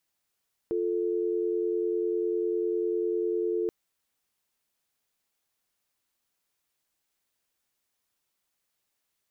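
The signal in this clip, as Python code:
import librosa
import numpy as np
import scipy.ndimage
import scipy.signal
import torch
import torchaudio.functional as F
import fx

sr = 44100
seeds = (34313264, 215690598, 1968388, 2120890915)

y = fx.call_progress(sr, length_s=2.98, kind='dial tone', level_db=-28.0)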